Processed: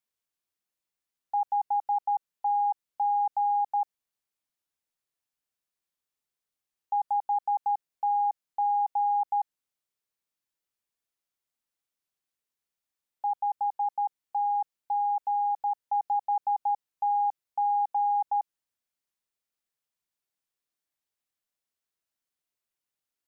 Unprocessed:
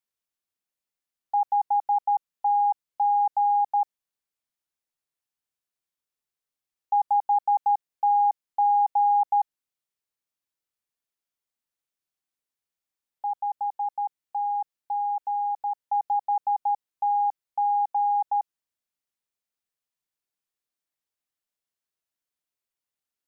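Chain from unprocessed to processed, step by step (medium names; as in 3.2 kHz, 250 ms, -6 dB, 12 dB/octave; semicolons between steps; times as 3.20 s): peak limiter -22 dBFS, peak gain reduction 5 dB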